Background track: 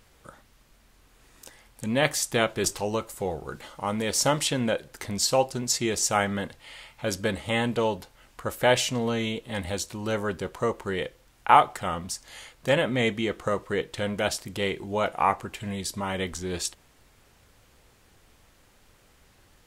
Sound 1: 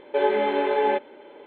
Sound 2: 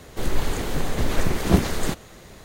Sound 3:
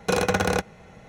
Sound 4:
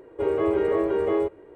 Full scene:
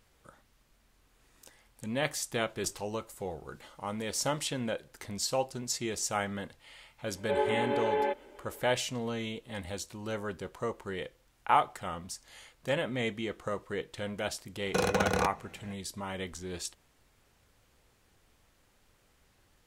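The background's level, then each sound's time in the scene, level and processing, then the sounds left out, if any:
background track −8 dB
0:07.15: mix in 1 −7.5 dB
0:14.66: mix in 3 −6 dB
not used: 2, 4

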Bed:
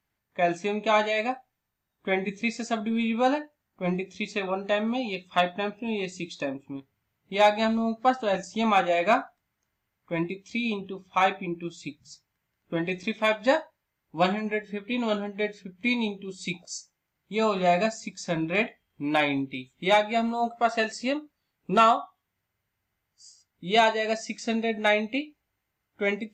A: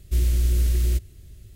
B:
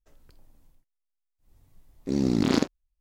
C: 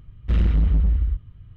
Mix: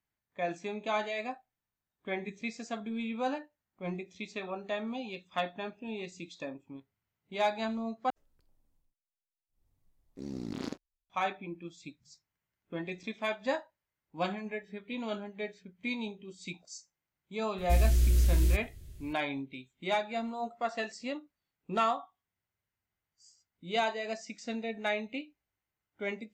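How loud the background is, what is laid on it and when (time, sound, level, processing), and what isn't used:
bed −9.5 dB
0:08.10: overwrite with B −15.5 dB
0:17.58: mix in A −4 dB
not used: C

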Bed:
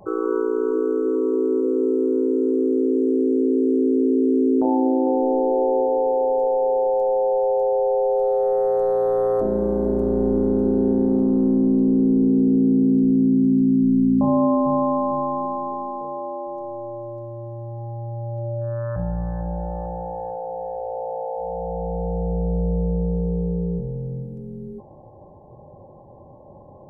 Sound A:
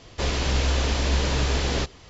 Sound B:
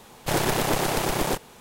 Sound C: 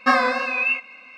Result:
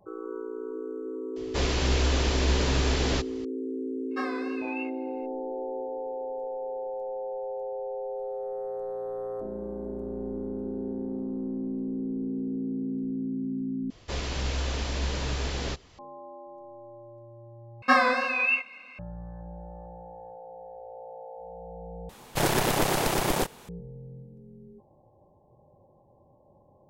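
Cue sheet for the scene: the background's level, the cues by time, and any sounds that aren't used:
bed −14.5 dB
0:01.36: mix in A −2 dB
0:04.10: mix in C −17 dB, fades 0.02 s
0:13.90: overwrite with A −7 dB
0:17.82: overwrite with C −3 dB
0:22.09: overwrite with B −1 dB

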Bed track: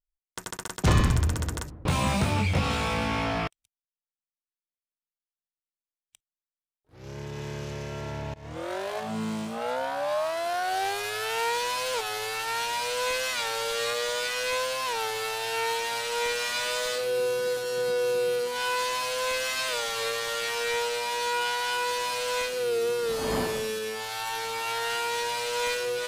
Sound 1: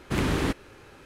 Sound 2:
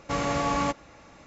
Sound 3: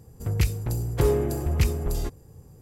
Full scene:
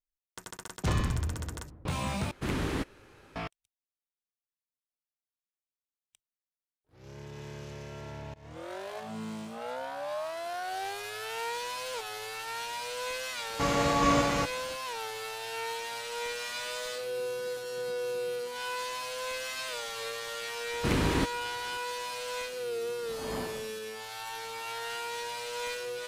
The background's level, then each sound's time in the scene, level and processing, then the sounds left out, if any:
bed track −7.5 dB
0:02.31: overwrite with 1 −6 dB
0:13.50: mix in 2 −0.5 dB + delay that plays each chunk backwards 525 ms, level −1 dB
0:20.73: mix in 1 −2 dB
not used: 3

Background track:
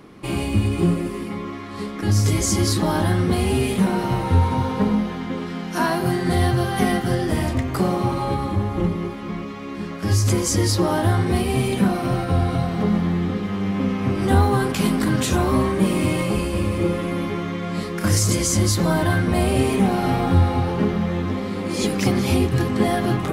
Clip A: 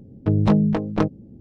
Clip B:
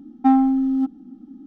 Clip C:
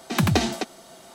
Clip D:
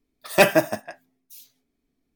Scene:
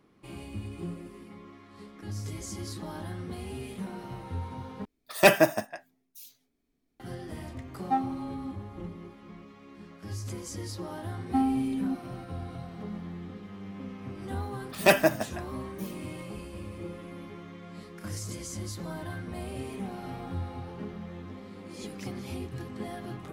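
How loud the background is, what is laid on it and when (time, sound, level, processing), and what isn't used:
background track −18.5 dB
0:04.85: overwrite with D −2.5 dB
0:07.66: mix in B −4 dB + noise reduction from a noise print of the clip's start 14 dB
0:11.09: mix in B −10.5 dB
0:14.48: mix in D −4.5 dB
not used: A, C

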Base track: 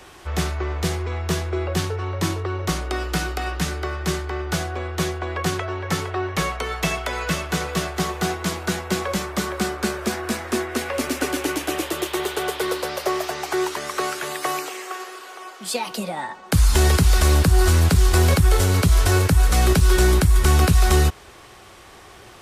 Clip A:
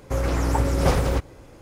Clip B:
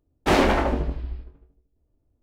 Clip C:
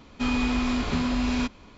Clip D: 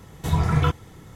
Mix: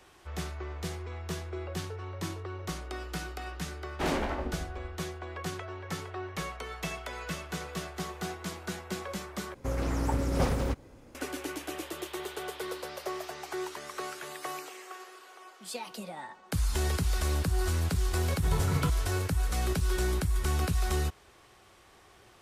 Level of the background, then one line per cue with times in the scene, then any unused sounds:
base track −13 dB
0:03.73: mix in B −12 dB
0:09.54: overwrite with A −8 dB + parametric band 240 Hz +7 dB 0.38 octaves
0:18.19: mix in D −10.5 dB
not used: C

